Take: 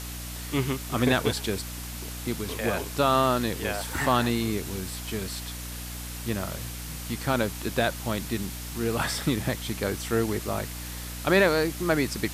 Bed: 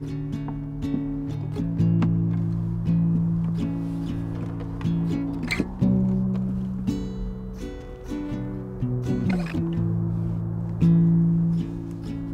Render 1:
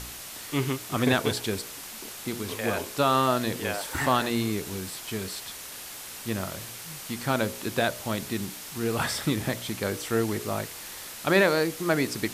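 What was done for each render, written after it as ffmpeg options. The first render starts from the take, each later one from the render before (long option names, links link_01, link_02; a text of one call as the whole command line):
ffmpeg -i in.wav -af "bandreject=frequency=60:width_type=h:width=4,bandreject=frequency=120:width_type=h:width=4,bandreject=frequency=180:width_type=h:width=4,bandreject=frequency=240:width_type=h:width=4,bandreject=frequency=300:width_type=h:width=4,bandreject=frequency=360:width_type=h:width=4,bandreject=frequency=420:width_type=h:width=4,bandreject=frequency=480:width_type=h:width=4,bandreject=frequency=540:width_type=h:width=4,bandreject=frequency=600:width_type=h:width=4,bandreject=frequency=660:width_type=h:width=4" out.wav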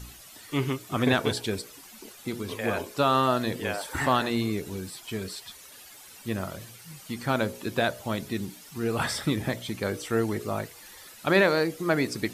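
ffmpeg -i in.wav -af "afftdn=noise_reduction=12:noise_floor=-41" out.wav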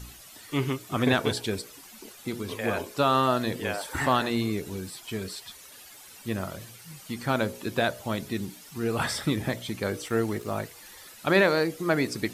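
ffmpeg -i in.wav -filter_complex "[0:a]asettb=1/sr,asplit=3[link_01][link_02][link_03];[link_01]atrim=end=10.084[link_04];[link_02]atrim=start=10.08:end=10.56,asetpts=PTS-STARTPTS,afade=type=in:duration=0.004:curve=qsin,afade=type=out:start_time=0.476:duration=0.004:curve=qsin,aeval=exprs='sgn(val(0))*max(abs(val(0))-0.00376,0)':channel_layout=same[link_05];[link_03]atrim=start=10.556[link_06];[link_04][link_05]acrossfade=duration=0.004:curve1=hsin:curve2=qsin[link_07];[link_07][link_06]acrossfade=duration=0.004:curve1=qsin:curve2=hsin" out.wav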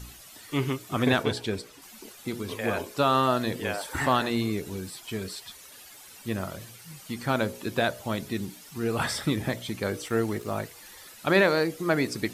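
ffmpeg -i in.wav -filter_complex "[0:a]asettb=1/sr,asplit=3[link_01][link_02][link_03];[link_01]atrim=end=1.234[link_04];[link_02]atrim=start=1.23:end=1.82,asetpts=PTS-STARTPTS,afade=type=in:duration=0.004:curve=qsin,afade=type=out:start_time=0.586:duration=0.004:curve=qsin,highshelf=frequency=7200:gain=-10[link_05];[link_03]atrim=start=1.816[link_06];[link_04][link_05]acrossfade=duration=0.004:curve1=hsin:curve2=qsin[link_07];[link_07][link_06]acrossfade=duration=0.004:curve1=qsin:curve2=hsin" out.wav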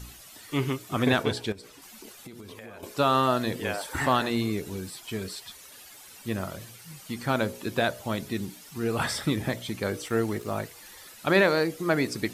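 ffmpeg -i in.wav -filter_complex "[0:a]asettb=1/sr,asplit=3[link_01][link_02][link_03];[link_01]atrim=end=1.524[link_04];[link_02]atrim=start=1.52:end=2.83,asetpts=PTS-STARTPTS,afade=type=in:duration=0.004:curve=qsin,afade=type=out:start_time=1.306:duration=0.004:curve=qsin,acompressor=threshold=-39dB:ratio=16:attack=3.2:release=140:knee=1:detection=peak[link_05];[link_03]atrim=start=2.826[link_06];[link_04][link_05]acrossfade=duration=0.004:curve1=hsin:curve2=qsin[link_07];[link_07][link_06]acrossfade=duration=0.004:curve1=qsin:curve2=hsin" out.wav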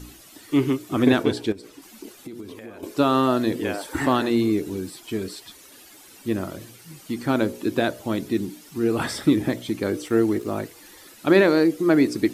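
ffmpeg -i in.wav -af "equalizer=frequency=310:width_type=o:width=0.78:gain=12.5" out.wav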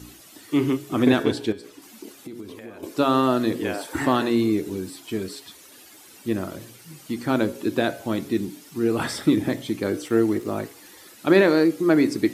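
ffmpeg -i in.wav -af "highpass=75,bandreject=frequency=138.2:width_type=h:width=4,bandreject=frequency=276.4:width_type=h:width=4,bandreject=frequency=414.6:width_type=h:width=4,bandreject=frequency=552.8:width_type=h:width=4,bandreject=frequency=691:width_type=h:width=4,bandreject=frequency=829.2:width_type=h:width=4,bandreject=frequency=967.4:width_type=h:width=4,bandreject=frequency=1105.6:width_type=h:width=4,bandreject=frequency=1243.8:width_type=h:width=4,bandreject=frequency=1382:width_type=h:width=4,bandreject=frequency=1520.2:width_type=h:width=4,bandreject=frequency=1658.4:width_type=h:width=4,bandreject=frequency=1796.6:width_type=h:width=4,bandreject=frequency=1934.8:width_type=h:width=4,bandreject=frequency=2073:width_type=h:width=4,bandreject=frequency=2211.2:width_type=h:width=4,bandreject=frequency=2349.4:width_type=h:width=4,bandreject=frequency=2487.6:width_type=h:width=4,bandreject=frequency=2625.8:width_type=h:width=4,bandreject=frequency=2764:width_type=h:width=4,bandreject=frequency=2902.2:width_type=h:width=4,bandreject=frequency=3040.4:width_type=h:width=4,bandreject=frequency=3178.6:width_type=h:width=4,bandreject=frequency=3316.8:width_type=h:width=4,bandreject=frequency=3455:width_type=h:width=4,bandreject=frequency=3593.2:width_type=h:width=4,bandreject=frequency=3731.4:width_type=h:width=4,bandreject=frequency=3869.6:width_type=h:width=4,bandreject=frequency=4007.8:width_type=h:width=4,bandreject=frequency=4146:width_type=h:width=4,bandreject=frequency=4284.2:width_type=h:width=4,bandreject=frequency=4422.4:width_type=h:width=4" out.wav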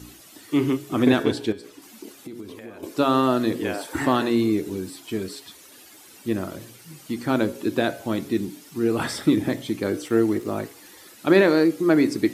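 ffmpeg -i in.wav -af anull out.wav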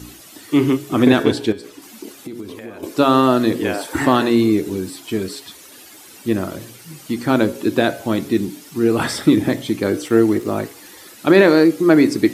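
ffmpeg -i in.wav -af "volume=6dB,alimiter=limit=-1dB:level=0:latency=1" out.wav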